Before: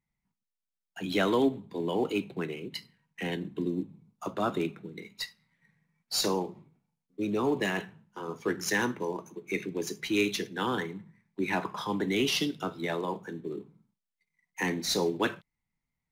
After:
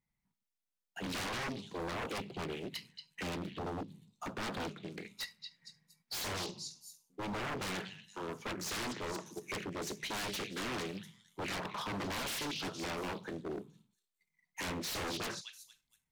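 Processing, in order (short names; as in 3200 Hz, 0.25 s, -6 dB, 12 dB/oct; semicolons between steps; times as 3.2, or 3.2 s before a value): delay with a stepping band-pass 0.232 s, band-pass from 3900 Hz, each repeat 0.7 oct, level -8 dB; wavefolder -31 dBFS; Doppler distortion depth 0.66 ms; gain -2 dB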